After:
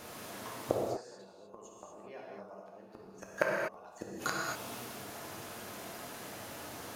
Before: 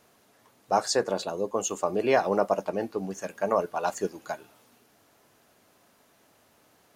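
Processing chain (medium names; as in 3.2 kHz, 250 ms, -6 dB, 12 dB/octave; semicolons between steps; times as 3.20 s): inverted gate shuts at -26 dBFS, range -41 dB; gated-style reverb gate 270 ms flat, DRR -3 dB; trim +12.5 dB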